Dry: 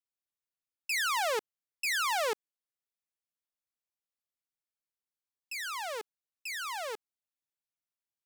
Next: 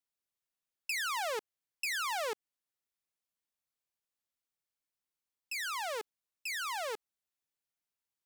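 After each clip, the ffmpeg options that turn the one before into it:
-af "acompressor=threshold=0.02:ratio=6,volume=1.12"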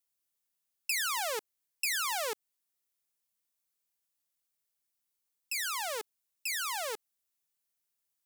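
-af "highshelf=f=5600:g=10.5"

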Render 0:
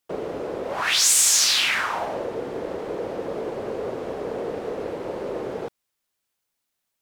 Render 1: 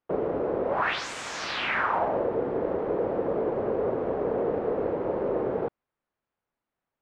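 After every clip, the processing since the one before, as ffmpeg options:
-af "lowpass=1400,volume=1.33"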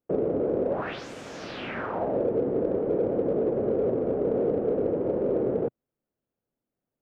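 -filter_complex "[0:a]equalizer=f=125:t=o:w=1:g=4,equalizer=f=250:t=o:w=1:g=5,equalizer=f=500:t=o:w=1:g=4,equalizer=f=1000:t=o:w=1:g=-9,equalizer=f=2000:t=o:w=1:g=-7,equalizer=f=4000:t=o:w=1:g=-6,equalizer=f=8000:t=o:w=1:g=-11,asplit=2[s0][s1];[s1]asoftclip=type=tanh:threshold=0.0355,volume=0.266[s2];[s0][s2]amix=inputs=2:normalize=0,volume=0.794"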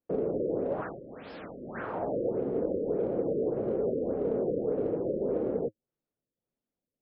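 -af "flanger=delay=3.5:depth=3.6:regen=-61:speed=0.73:shape=triangular,afftfilt=real='re*lt(b*sr/1024,590*pow(5400/590,0.5+0.5*sin(2*PI*1.7*pts/sr)))':imag='im*lt(b*sr/1024,590*pow(5400/590,0.5+0.5*sin(2*PI*1.7*pts/sr)))':win_size=1024:overlap=0.75"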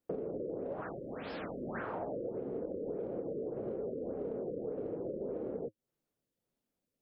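-af "acompressor=threshold=0.0112:ratio=8,volume=1.41"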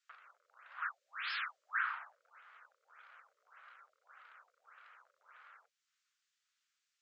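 -af "asuperpass=centerf=3200:order=12:qfactor=0.5,volume=3.35"

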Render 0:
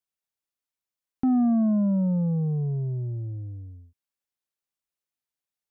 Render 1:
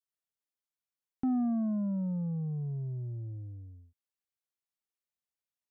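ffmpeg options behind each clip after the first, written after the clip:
-af "adynamicequalizer=threshold=0.0158:dfrequency=430:dqfactor=0.7:tfrequency=430:tqfactor=0.7:attack=5:release=100:ratio=0.375:range=3.5:mode=cutabove:tftype=bell,volume=0.447"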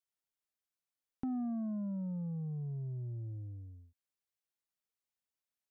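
-af "acompressor=threshold=0.0126:ratio=2,volume=0.841"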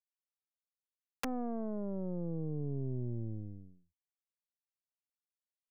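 -af "aemphasis=mode=reproduction:type=bsi,aeval=exprs='0.106*(cos(1*acos(clip(val(0)/0.106,-1,1)))-cos(1*PI/2))+0.0473*(cos(2*acos(clip(val(0)/0.106,-1,1)))-cos(2*PI/2))+0.0168*(cos(3*acos(clip(val(0)/0.106,-1,1)))-cos(3*PI/2))+0.00841*(cos(7*acos(clip(val(0)/0.106,-1,1)))-cos(7*PI/2))':c=same,aeval=exprs='(mod(17.8*val(0)+1,2)-1)/17.8':c=same"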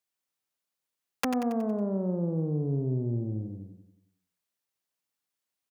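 -filter_complex "[0:a]highpass=89,asplit=2[s0][s1];[s1]aecho=0:1:92|184|276|368|460|552:0.335|0.174|0.0906|0.0471|0.0245|0.0127[s2];[s0][s2]amix=inputs=2:normalize=0,volume=2.66"

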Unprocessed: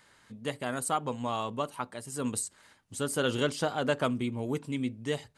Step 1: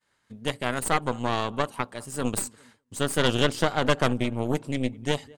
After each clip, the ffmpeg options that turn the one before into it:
-filter_complex "[0:a]asplit=2[s0][s1];[s1]adelay=203,lowpass=f=2000:p=1,volume=0.0891,asplit=2[s2][s3];[s3]adelay=203,lowpass=f=2000:p=1,volume=0.49,asplit=2[s4][s5];[s5]adelay=203,lowpass=f=2000:p=1,volume=0.49,asplit=2[s6][s7];[s7]adelay=203,lowpass=f=2000:p=1,volume=0.49[s8];[s0][s2][s4][s6][s8]amix=inputs=5:normalize=0,aeval=exprs='0.2*(cos(1*acos(clip(val(0)/0.2,-1,1)))-cos(1*PI/2))+0.0794*(cos(4*acos(clip(val(0)/0.2,-1,1)))-cos(4*PI/2))':c=same,agate=range=0.0224:threshold=0.00251:ratio=3:detection=peak,volume=1.33"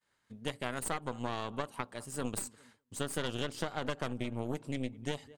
-af "acompressor=threshold=0.0631:ratio=6,volume=0.501"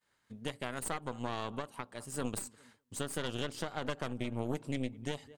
-af "alimiter=limit=0.075:level=0:latency=1:release=386,volume=1.12"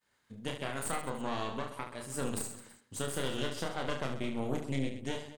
-af "aecho=1:1:30|72|130.8|213.1|328.4:0.631|0.398|0.251|0.158|0.1"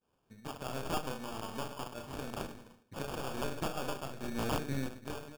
-filter_complex "[0:a]acrossover=split=1600[s0][s1];[s0]aeval=exprs='val(0)*(1-0.7/2+0.7/2*cos(2*PI*1.1*n/s))':c=same[s2];[s1]aeval=exprs='val(0)*(1-0.7/2-0.7/2*cos(2*PI*1.1*n/s))':c=same[s3];[s2][s3]amix=inputs=2:normalize=0,acrusher=samples=22:mix=1:aa=0.000001,aeval=exprs='(mod(18.8*val(0)+1,2)-1)/18.8':c=same,volume=1.19"

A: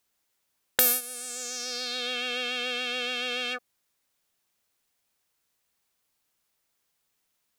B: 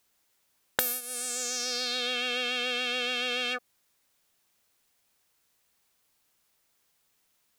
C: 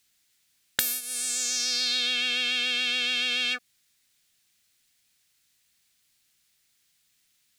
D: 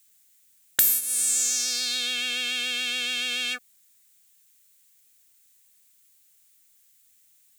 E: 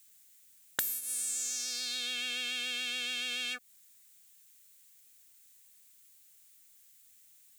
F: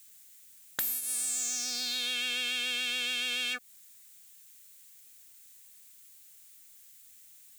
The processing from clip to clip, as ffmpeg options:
-af "acompressor=threshold=0.0316:ratio=5,volume=1.68"
-af "equalizer=f=125:t=o:w=1:g=3,equalizer=f=500:t=o:w=1:g=-8,equalizer=f=1000:t=o:w=1:g=-8,equalizer=f=2000:t=o:w=1:g=4,equalizer=f=4000:t=o:w=1:g=5,equalizer=f=8000:t=o:w=1:g=4"
-af "aexciter=amount=2.8:drive=6:freq=6700,volume=0.841"
-af "acompressor=threshold=0.02:ratio=3"
-af "asoftclip=type=tanh:threshold=0.0355,volume=1.88"

